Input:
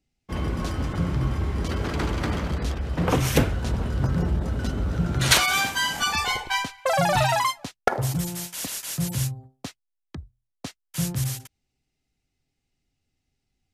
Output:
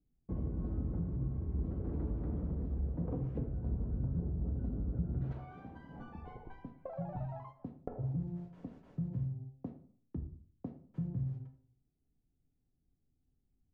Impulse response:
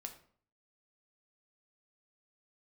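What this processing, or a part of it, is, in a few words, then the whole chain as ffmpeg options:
television next door: -filter_complex "[0:a]acompressor=threshold=0.0224:ratio=5,lowpass=390[s0];[1:a]atrim=start_sample=2205[s1];[s0][s1]afir=irnorm=-1:irlink=0,volume=1.5"

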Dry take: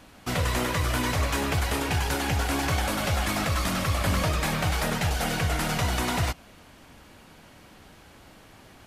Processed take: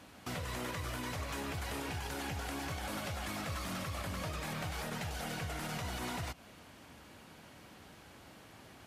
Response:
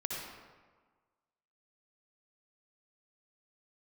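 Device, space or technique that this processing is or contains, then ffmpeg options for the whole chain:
podcast mastering chain: -af "highpass=67,deesser=0.55,acompressor=threshold=0.0316:ratio=6,alimiter=level_in=1.33:limit=0.0631:level=0:latency=1:release=63,volume=0.75,volume=0.668" -ar 48000 -c:a libmp3lame -b:a 128k

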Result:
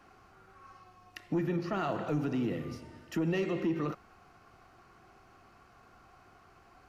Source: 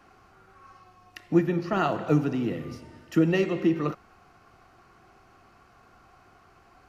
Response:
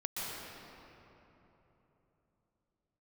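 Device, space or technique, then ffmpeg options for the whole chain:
soft clipper into limiter: -af "asoftclip=type=tanh:threshold=0.2,alimiter=limit=0.0841:level=0:latency=1:release=65,volume=0.75"

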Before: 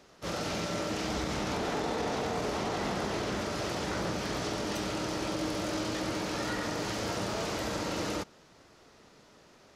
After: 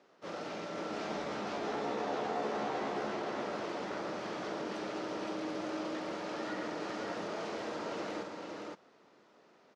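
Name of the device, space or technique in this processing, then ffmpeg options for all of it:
through cloth: -filter_complex "[0:a]highpass=260,lowpass=7100,highshelf=f=3200:g=-11.5,asettb=1/sr,asplit=3[s0][s1][s2];[s0]atrim=end=0.924[s3];[s1]atrim=start=0.92:end=3.14,asetpts=PTS-STARTPTS,afade=t=in:d=0.004:c=qsin,afade=t=out:st=2.216:d=0.004:c=qsin,asplit=2[s4][s5];[s5]adelay=14,volume=0.631[s6];[s4][s6]amix=inputs=2:normalize=0,atrim=end_sample=97902[s7];[s2]atrim=start=3.136[s8];[s3][s7]acrossfade=d=0.004:c1=hsin:c2=qsin[s9];[s9][s8]acrossfade=d=0.004:c1=qsin:c2=hsin,aecho=1:1:515:0.668,volume=0.596"

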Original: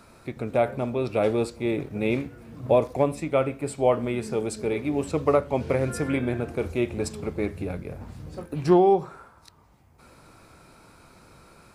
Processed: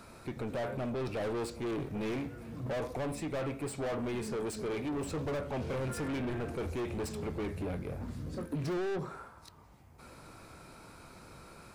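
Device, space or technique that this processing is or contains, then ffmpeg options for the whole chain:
saturation between pre-emphasis and de-emphasis: -filter_complex "[0:a]highshelf=f=2500:g=9,asoftclip=type=tanh:threshold=0.0251,highshelf=f=2500:g=-9,asettb=1/sr,asplit=3[s0][s1][s2];[s0]atrim=end=8.034[s3];[s1]atrim=start=8.03:end=9.11,asetpts=PTS-STARTPTS,afade=t=in:d=0.004:c=qsin,afade=t=out:st=1.076:d=0.004:c=qsin,equalizer=f=250:t=o:w=0.33:g=8,equalizer=f=800:t=o:w=0.33:g=-6,equalizer=f=2500:t=o:w=0.33:g=-3[s4];[s2]atrim=start=9.106[s5];[s3][s4]acrossfade=d=0.004:c1=hsin:c2=qsin[s6];[s6][s5]acrossfade=d=0.004:c1=qsin:c2=hsin"

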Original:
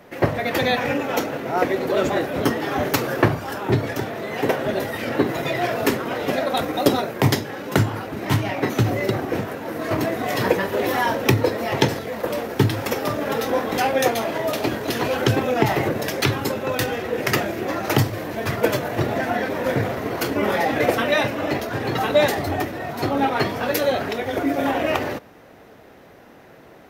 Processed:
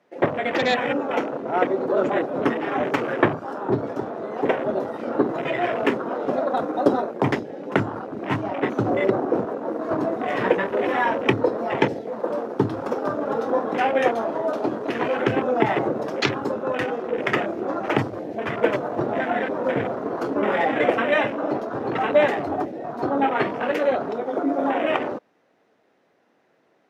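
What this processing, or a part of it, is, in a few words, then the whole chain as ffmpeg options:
over-cleaned archive recording: -filter_complex "[0:a]highpass=200,lowpass=7800,afwtdn=0.0447,asettb=1/sr,asplit=3[s0][s1][s2];[s0]atrim=end=8.814[s3];[s1]atrim=start=8.81:end=9.77,asetpts=PTS-STARTPTS,afade=t=in:d=0.004:c=qsin,afade=t=out:st=0.956:d=0.004:c=qsin,equalizer=f=490:w=0.53:g=4[s4];[s2]atrim=start=9.766[s5];[s3][s4]acrossfade=d=0.004:c1=hsin:c2=qsin[s6];[s6][s5]acrossfade=d=0.004:c1=qsin:c2=hsin"

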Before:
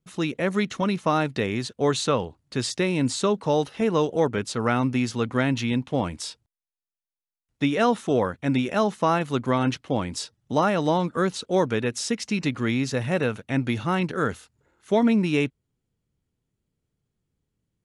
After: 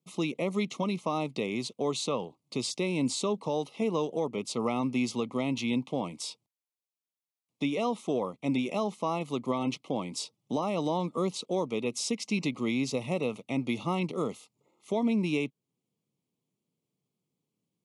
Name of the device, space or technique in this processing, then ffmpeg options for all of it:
PA system with an anti-feedback notch: -af "highpass=f=150:w=0.5412,highpass=f=150:w=1.3066,asuperstop=centerf=1600:order=8:qfactor=2,alimiter=limit=0.133:level=0:latency=1:release=417,volume=0.794"

